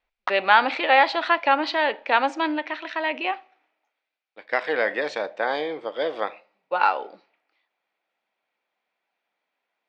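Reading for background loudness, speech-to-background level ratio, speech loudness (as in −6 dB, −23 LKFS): −34.0 LKFS, 11.0 dB, −23.0 LKFS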